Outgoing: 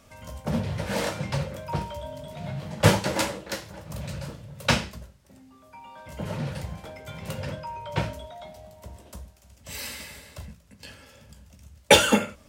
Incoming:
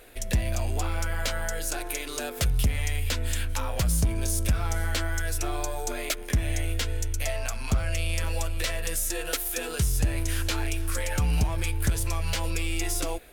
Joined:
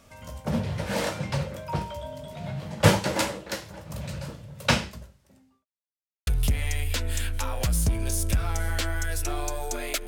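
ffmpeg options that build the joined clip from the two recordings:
-filter_complex "[0:a]apad=whole_dur=10.07,atrim=end=10.07,asplit=2[s0][s1];[s0]atrim=end=5.65,asetpts=PTS-STARTPTS,afade=t=out:st=4.78:d=0.87:c=qsin[s2];[s1]atrim=start=5.65:end=6.27,asetpts=PTS-STARTPTS,volume=0[s3];[1:a]atrim=start=2.43:end=6.23,asetpts=PTS-STARTPTS,afade=t=in:d=0.004:c=hsin[s4];[s2][s3][s4]concat=n=3:v=0:a=1"

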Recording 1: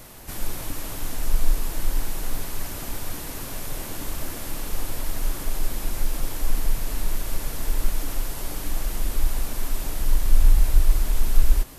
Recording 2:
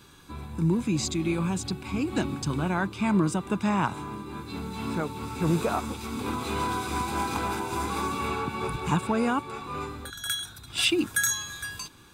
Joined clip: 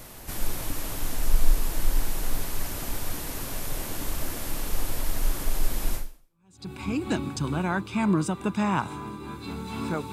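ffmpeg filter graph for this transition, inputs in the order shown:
-filter_complex "[0:a]apad=whole_dur=10.12,atrim=end=10.12,atrim=end=6.71,asetpts=PTS-STARTPTS[s0];[1:a]atrim=start=1.01:end=5.18,asetpts=PTS-STARTPTS[s1];[s0][s1]acrossfade=d=0.76:c1=exp:c2=exp"

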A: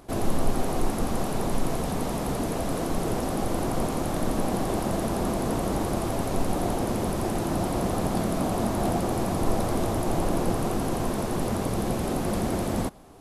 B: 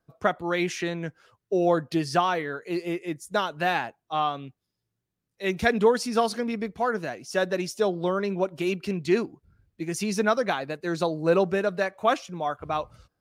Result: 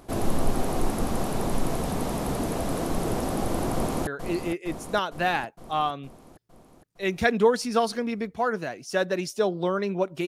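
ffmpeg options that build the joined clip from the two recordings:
-filter_complex "[0:a]apad=whole_dur=10.27,atrim=end=10.27,atrim=end=4.072[s0];[1:a]atrim=start=2.478:end=8.68[s1];[s0][s1]acrossfade=d=0.004:c1=hsin:c2=hsin,asplit=2[s2][s3];[s3]afade=t=in:st=3.73:d=0.01,afade=t=out:st=4.07:d=0.01,aecho=0:1:460|920|1380|1840|2300|2760|3220|3680|4140:0.398107|0.25877|0.1682|0.10933|0.0710646|0.046192|0.0300248|0.0195161|0.0126855[s4];[s2][s4]amix=inputs=2:normalize=0"

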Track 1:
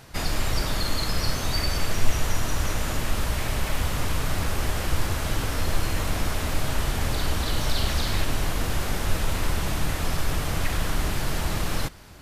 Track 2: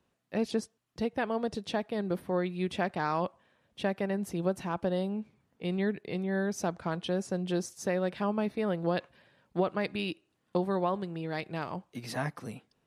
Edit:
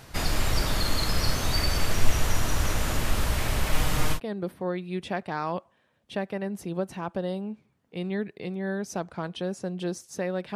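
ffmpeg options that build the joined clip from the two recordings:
-filter_complex "[0:a]asettb=1/sr,asplit=3[s0][s1][s2];[s0]atrim=end=3.724[s3];[s1]atrim=start=3.72:end=4.2,asetpts=PTS-STARTPTS,afade=t=in:d=0.004:c=qsin,afade=t=out:st=0.476:d=0.004:c=qsin,aecho=1:1:6.5:0.63,atrim=end_sample=21168[s4];[s2]atrim=start=4.196[s5];[s3][s4]acrossfade=d=0.004:c1=hsin:c2=qsin[s6];[s6][s5]acrossfade=d=0.004:c1=qsin:c2=hsin,apad=whole_dur=10.55,atrim=end=10.55,atrim=end=4.2,asetpts=PTS-STARTPTS[s7];[1:a]atrim=start=1.8:end=8.23,asetpts=PTS-STARTPTS[s8];[s7][s8]acrossfade=d=0.08:c1=tri:c2=tri"

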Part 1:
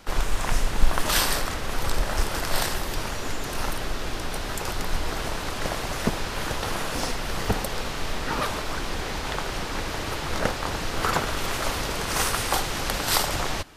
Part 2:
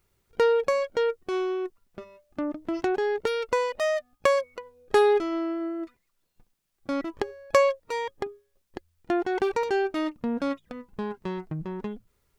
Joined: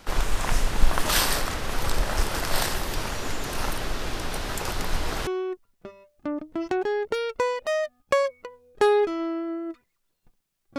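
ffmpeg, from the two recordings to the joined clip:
-filter_complex "[0:a]apad=whole_dur=10.78,atrim=end=10.78,atrim=end=5.272[s0];[1:a]atrim=start=1.398:end=6.91[s1];[s0][s1]acrossfade=d=0.004:c1=hsin:c2=hsin"

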